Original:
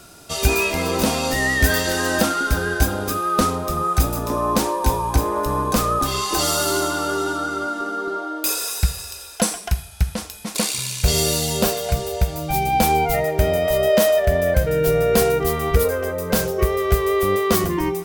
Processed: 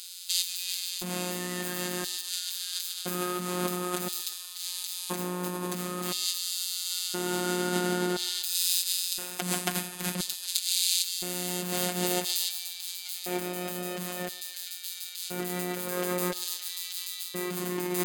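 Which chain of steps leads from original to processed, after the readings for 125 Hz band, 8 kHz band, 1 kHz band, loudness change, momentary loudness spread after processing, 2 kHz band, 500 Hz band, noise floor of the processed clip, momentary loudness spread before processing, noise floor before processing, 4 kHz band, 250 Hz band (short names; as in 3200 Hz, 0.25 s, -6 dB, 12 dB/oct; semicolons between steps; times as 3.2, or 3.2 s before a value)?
-16.0 dB, -5.0 dB, -16.0 dB, -10.0 dB, 8 LU, -13.5 dB, -16.0 dB, -41 dBFS, 7 LU, -37 dBFS, -3.5 dB, -10.0 dB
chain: spectral contrast lowered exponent 0.47; bell 210 Hz +14.5 dB 0.4 oct; notch 5600 Hz, Q 6.7; limiter -10 dBFS, peak gain reduction 10.5 dB; negative-ratio compressor -28 dBFS, ratio -1; LFO high-pass square 0.49 Hz 270–4000 Hz; robotiser 179 Hz; on a send: narrowing echo 0.126 s, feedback 77%, band-pass 1300 Hz, level -16.5 dB; on the sum: gain -3 dB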